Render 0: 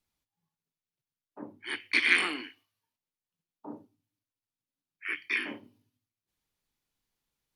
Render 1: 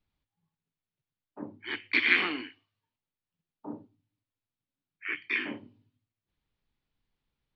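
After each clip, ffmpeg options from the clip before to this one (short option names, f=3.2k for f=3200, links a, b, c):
-af "lowpass=f=4.1k:w=0.5412,lowpass=f=4.1k:w=1.3066,lowshelf=f=210:g=8.5"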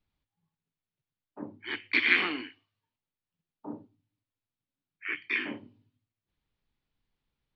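-af anull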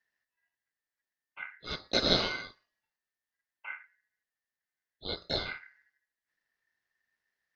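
-af "aeval=exprs='val(0)*sin(2*PI*1800*n/s)':c=same,volume=1dB"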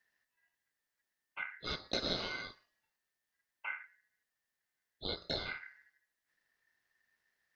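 -af "acompressor=threshold=-40dB:ratio=3,volume=3.5dB"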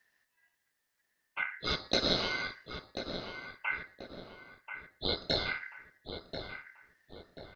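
-filter_complex "[0:a]asplit=2[a][b];[b]adelay=1036,lowpass=f=2.4k:p=1,volume=-7.5dB,asplit=2[c][d];[d]adelay=1036,lowpass=f=2.4k:p=1,volume=0.45,asplit=2[e][f];[f]adelay=1036,lowpass=f=2.4k:p=1,volume=0.45,asplit=2[g][h];[h]adelay=1036,lowpass=f=2.4k:p=1,volume=0.45,asplit=2[i][j];[j]adelay=1036,lowpass=f=2.4k:p=1,volume=0.45[k];[a][c][e][g][i][k]amix=inputs=6:normalize=0,volume=6.5dB"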